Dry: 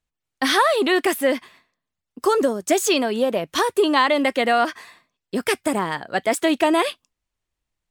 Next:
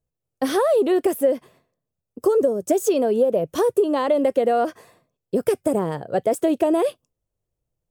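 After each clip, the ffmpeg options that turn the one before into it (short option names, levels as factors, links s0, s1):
-af "equalizer=f=125:t=o:w=1:g=10,equalizer=f=250:t=o:w=1:g=-3,equalizer=f=500:t=o:w=1:g=10,equalizer=f=1000:t=o:w=1:g=-6,equalizer=f=2000:t=o:w=1:g=-11,equalizer=f=4000:t=o:w=1:g=-10,equalizer=f=8000:t=o:w=1:g=-3,acompressor=threshold=0.178:ratio=5"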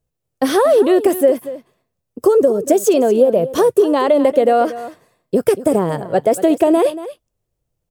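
-af "aecho=1:1:234:0.188,volume=2"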